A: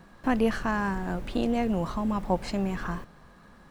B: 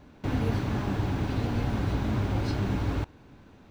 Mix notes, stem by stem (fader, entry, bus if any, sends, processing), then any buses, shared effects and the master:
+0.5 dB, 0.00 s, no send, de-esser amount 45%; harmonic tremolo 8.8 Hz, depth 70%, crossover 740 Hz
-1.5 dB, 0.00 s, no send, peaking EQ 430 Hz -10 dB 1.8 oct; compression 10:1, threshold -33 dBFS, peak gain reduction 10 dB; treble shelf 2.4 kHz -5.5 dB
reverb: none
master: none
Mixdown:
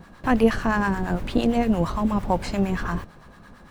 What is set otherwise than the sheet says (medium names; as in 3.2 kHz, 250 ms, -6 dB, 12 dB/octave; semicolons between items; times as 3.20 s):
stem A +0.5 dB -> +8.5 dB; stem B: polarity flipped